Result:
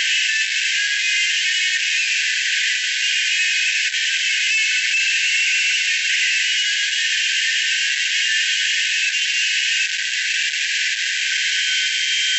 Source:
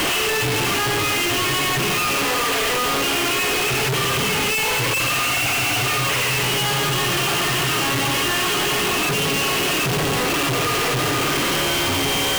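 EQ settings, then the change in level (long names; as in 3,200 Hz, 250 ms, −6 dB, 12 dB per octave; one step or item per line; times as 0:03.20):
linear-phase brick-wall band-pass 1,500–7,800 Hz
parametric band 4,900 Hz −4 dB 2.5 octaves
+7.0 dB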